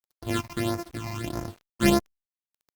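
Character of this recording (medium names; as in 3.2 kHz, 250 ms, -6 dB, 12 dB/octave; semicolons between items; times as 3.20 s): a buzz of ramps at a fixed pitch in blocks of 128 samples; phasing stages 8, 1.6 Hz, lowest notch 430–3400 Hz; a quantiser's noise floor 8-bit, dither none; Opus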